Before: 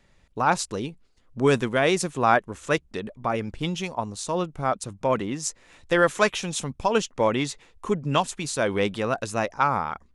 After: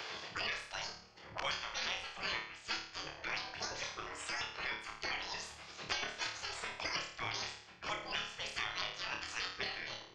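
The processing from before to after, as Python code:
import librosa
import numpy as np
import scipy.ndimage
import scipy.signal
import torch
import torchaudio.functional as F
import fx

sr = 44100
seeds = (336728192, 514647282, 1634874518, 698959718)

y = fx.pitch_trill(x, sr, semitones=10.5, every_ms=116)
y = scipy.signal.sosfilt(scipy.signal.butter(6, 5500.0, 'lowpass', fs=sr, output='sos'), y)
y = fx.notch(y, sr, hz=3800.0, q=7.6)
y = fx.spec_gate(y, sr, threshold_db=-20, keep='weak')
y = fx.peak_eq(y, sr, hz=250.0, db=-12.5, octaves=0.21)
y = fx.room_flutter(y, sr, wall_m=4.7, rt60_s=0.43)
y = fx.band_squash(y, sr, depth_pct=100)
y = y * librosa.db_to_amplitude(-2.5)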